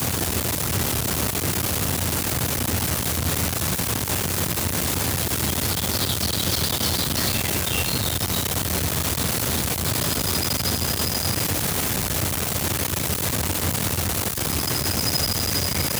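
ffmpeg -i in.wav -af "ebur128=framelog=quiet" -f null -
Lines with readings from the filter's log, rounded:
Integrated loudness:
  I:         -21.9 LUFS
  Threshold: -31.9 LUFS
Loudness range:
  LRA:         0.8 LU
  Threshold: -41.9 LUFS
  LRA low:   -22.3 LUFS
  LRA high:  -21.5 LUFS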